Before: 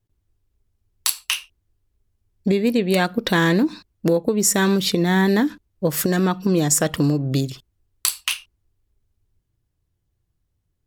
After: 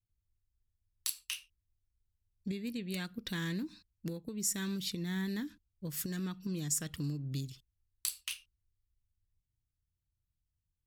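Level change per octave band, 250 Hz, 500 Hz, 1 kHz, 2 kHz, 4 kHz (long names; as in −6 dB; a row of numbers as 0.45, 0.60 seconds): −18.5, −25.5, −27.0, −19.5, −16.0 decibels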